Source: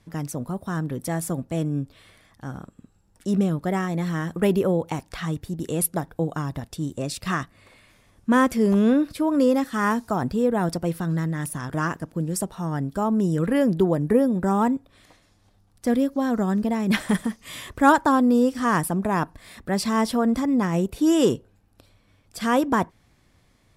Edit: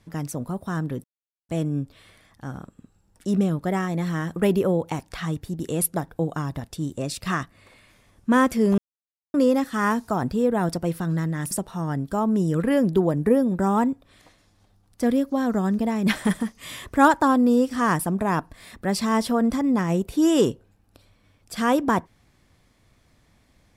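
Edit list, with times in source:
0:01.04–0:01.49: silence
0:08.78–0:09.34: silence
0:11.51–0:12.35: remove

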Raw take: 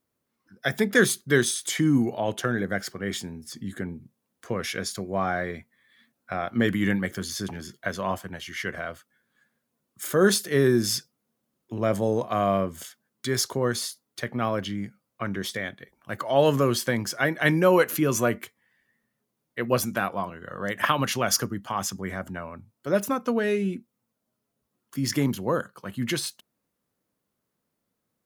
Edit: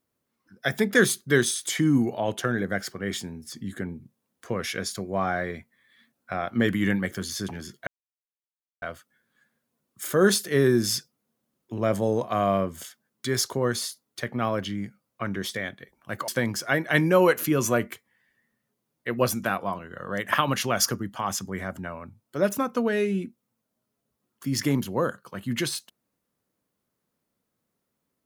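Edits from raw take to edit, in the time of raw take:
0:07.87–0:08.82: silence
0:16.28–0:16.79: remove

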